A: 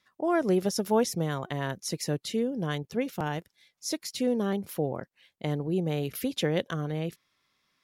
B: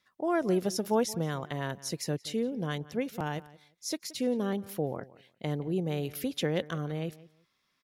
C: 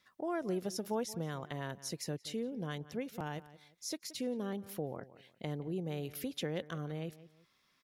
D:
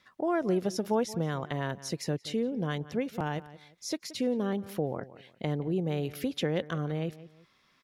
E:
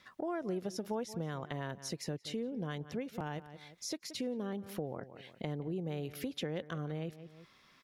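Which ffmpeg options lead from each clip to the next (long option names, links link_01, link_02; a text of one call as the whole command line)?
ffmpeg -i in.wav -filter_complex "[0:a]asplit=2[link_01][link_02];[link_02]adelay=175,lowpass=frequency=3800:poles=1,volume=-19dB,asplit=2[link_03][link_04];[link_04]adelay=175,lowpass=frequency=3800:poles=1,volume=0.2[link_05];[link_01][link_03][link_05]amix=inputs=3:normalize=0,volume=-2.5dB" out.wav
ffmpeg -i in.wav -af "acompressor=threshold=-55dB:ratio=1.5,volume=2.5dB" out.wav
ffmpeg -i in.wav -af "lowpass=frequency=3900:poles=1,volume=8dB" out.wav
ffmpeg -i in.wav -af "acompressor=threshold=-47dB:ratio=2,volume=3dB" out.wav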